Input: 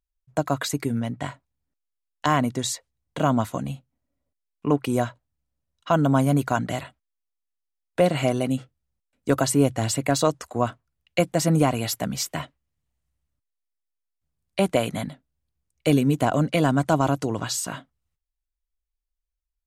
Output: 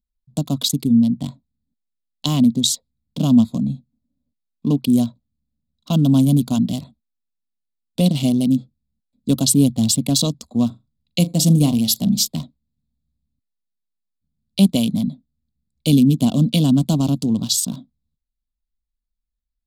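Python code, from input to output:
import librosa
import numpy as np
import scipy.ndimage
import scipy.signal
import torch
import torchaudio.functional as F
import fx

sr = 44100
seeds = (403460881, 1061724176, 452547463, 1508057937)

y = fx.room_flutter(x, sr, wall_m=7.0, rt60_s=0.21, at=(10.66, 12.28))
y = fx.wiener(y, sr, points=15)
y = fx.curve_eq(y, sr, hz=(120.0, 230.0, 340.0, 530.0, 1100.0, 1700.0, 3400.0, 6700.0, 14000.0), db=(0, 12, -6, -9, -14, -27, 12, 5, 11))
y = F.gain(torch.from_numpy(y), 3.0).numpy()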